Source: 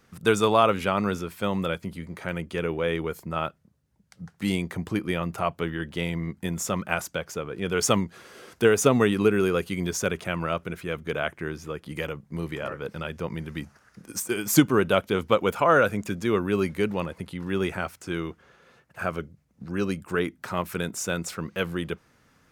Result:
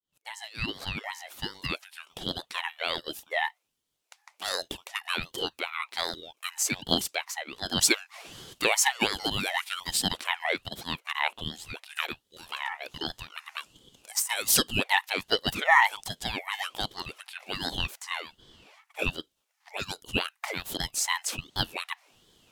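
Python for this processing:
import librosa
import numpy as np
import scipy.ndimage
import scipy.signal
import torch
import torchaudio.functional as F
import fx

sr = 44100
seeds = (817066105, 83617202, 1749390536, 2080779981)

y = fx.fade_in_head(x, sr, length_s=2.17)
y = fx.brickwall_highpass(y, sr, low_hz=1200.0)
y = fx.ring_lfo(y, sr, carrier_hz=1100.0, swing_pct=60, hz=1.3)
y = F.gain(torch.from_numpy(y), 7.0).numpy()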